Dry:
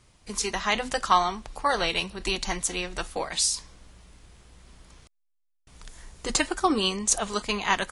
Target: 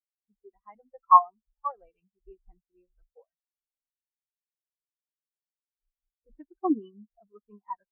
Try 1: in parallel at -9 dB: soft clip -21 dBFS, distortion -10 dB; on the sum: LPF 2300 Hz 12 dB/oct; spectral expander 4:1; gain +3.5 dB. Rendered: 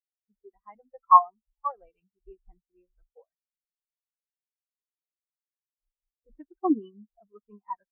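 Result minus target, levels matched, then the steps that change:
soft clip: distortion -7 dB
change: soft clip -32 dBFS, distortion -3 dB

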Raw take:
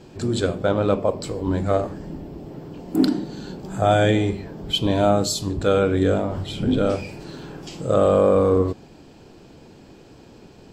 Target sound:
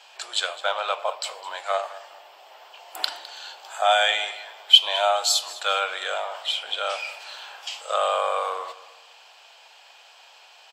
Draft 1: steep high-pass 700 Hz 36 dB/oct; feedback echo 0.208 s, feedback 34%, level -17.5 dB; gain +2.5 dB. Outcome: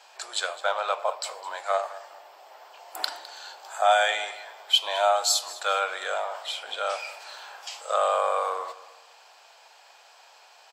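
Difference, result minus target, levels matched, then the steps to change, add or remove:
4000 Hz band -4.0 dB
add after steep high-pass: bell 3000 Hz +8.5 dB 0.71 oct

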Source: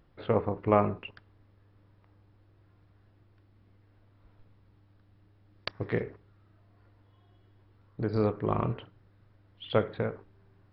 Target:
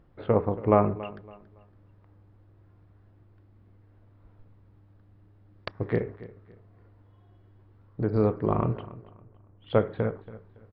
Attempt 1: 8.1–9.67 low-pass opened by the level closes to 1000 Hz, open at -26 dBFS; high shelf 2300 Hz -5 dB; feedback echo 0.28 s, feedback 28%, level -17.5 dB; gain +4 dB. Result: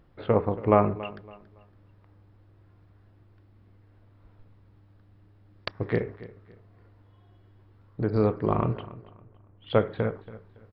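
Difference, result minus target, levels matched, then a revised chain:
4000 Hz band +5.0 dB
8.1–9.67 low-pass opened by the level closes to 1000 Hz, open at -26 dBFS; high shelf 2300 Hz -13 dB; feedback echo 0.28 s, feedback 28%, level -17.5 dB; gain +4 dB

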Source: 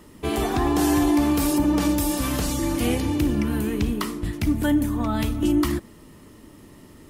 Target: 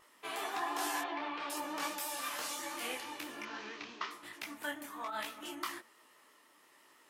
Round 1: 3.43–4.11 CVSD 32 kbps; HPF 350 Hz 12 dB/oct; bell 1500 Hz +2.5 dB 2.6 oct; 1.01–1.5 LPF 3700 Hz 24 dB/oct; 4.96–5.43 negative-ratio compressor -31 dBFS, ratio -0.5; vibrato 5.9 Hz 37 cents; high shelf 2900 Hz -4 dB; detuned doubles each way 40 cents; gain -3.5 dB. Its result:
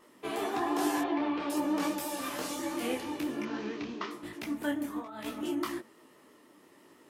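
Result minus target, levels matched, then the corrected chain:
250 Hz band +9.5 dB
3.43–4.11 CVSD 32 kbps; HPF 930 Hz 12 dB/oct; bell 1500 Hz +2.5 dB 2.6 oct; 1.01–1.5 LPF 3700 Hz 24 dB/oct; 4.96–5.43 negative-ratio compressor -31 dBFS, ratio -0.5; vibrato 5.9 Hz 37 cents; high shelf 2900 Hz -4 dB; detuned doubles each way 40 cents; gain -3.5 dB

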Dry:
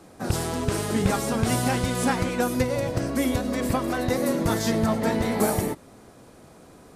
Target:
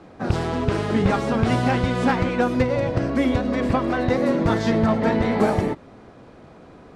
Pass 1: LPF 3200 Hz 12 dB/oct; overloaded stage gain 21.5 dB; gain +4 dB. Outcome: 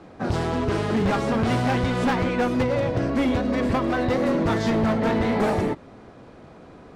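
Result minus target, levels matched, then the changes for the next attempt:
overloaded stage: distortion +15 dB
change: overloaded stage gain 14 dB

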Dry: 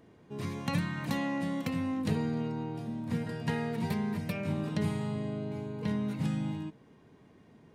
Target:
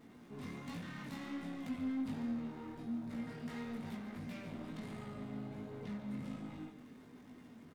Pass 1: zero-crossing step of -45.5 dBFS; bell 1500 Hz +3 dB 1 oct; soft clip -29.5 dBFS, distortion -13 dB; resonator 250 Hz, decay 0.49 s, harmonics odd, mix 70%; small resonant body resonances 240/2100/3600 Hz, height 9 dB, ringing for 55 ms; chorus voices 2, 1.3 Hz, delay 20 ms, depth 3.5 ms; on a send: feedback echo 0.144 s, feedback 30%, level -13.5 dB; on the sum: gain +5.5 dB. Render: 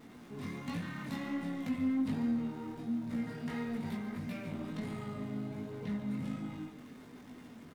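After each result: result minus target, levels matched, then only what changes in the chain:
zero-crossing step: distortion +8 dB; soft clip: distortion -6 dB
change: zero-crossing step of -53.5 dBFS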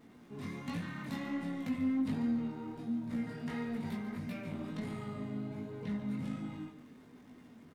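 soft clip: distortion -6 dB
change: soft clip -38.5 dBFS, distortion -6 dB

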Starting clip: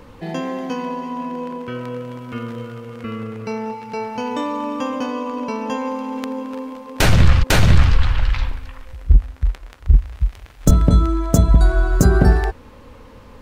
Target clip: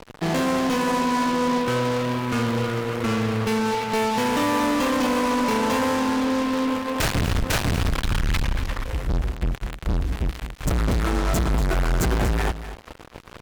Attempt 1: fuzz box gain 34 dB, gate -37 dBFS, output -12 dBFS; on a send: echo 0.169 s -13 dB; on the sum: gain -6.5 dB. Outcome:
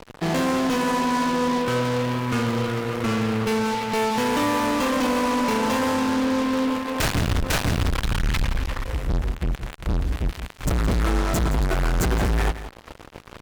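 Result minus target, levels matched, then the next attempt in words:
echo 69 ms early
fuzz box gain 34 dB, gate -37 dBFS, output -12 dBFS; on a send: echo 0.238 s -13 dB; on the sum: gain -6.5 dB

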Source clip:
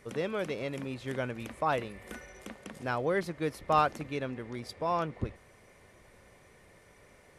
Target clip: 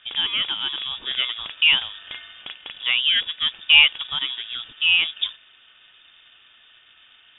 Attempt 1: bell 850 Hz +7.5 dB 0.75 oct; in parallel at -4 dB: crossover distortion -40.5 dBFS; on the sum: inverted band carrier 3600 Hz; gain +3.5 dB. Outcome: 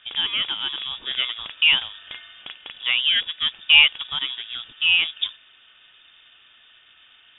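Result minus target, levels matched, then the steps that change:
crossover distortion: distortion +8 dB
change: crossover distortion -50.5 dBFS

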